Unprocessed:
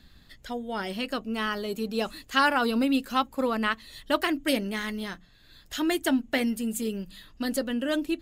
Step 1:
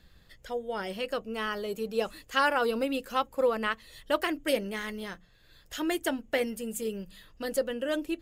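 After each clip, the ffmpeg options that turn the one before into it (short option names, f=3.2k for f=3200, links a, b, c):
-af "equalizer=f=250:t=o:w=0.33:g=-9,equalizer=f=500:t=o:w=0.33:g=8,equalizer=f=4k:t=o:w=0.33:g=-5,volume=-3dB"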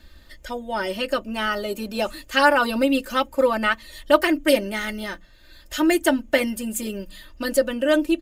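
-af "aecho=1:1:3.3:0.9,volume=6.5dB"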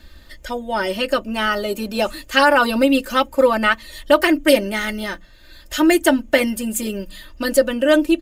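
-af "alimiter=level_in=5.5dB:limit=-1dB:release=50:level=0:latency=1,volume=-1dB"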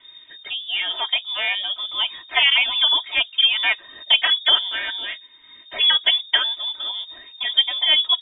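-af "lowpass=f=3.1k:t=q:w=0.5098,lowpass=f=3.1k:t=q:w=0.6013,lowpass=f=3.1k:t=q:w=0.9,lowpass=f=3.1k:t=q:w=2.563,afreqshift=-3700,volume=-3dB"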